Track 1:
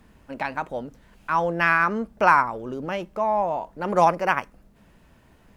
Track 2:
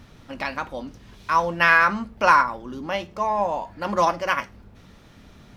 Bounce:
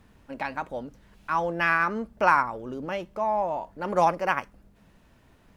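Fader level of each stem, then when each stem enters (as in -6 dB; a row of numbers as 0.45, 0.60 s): -3.5, -17.5 dB; 0.00, 0.00 s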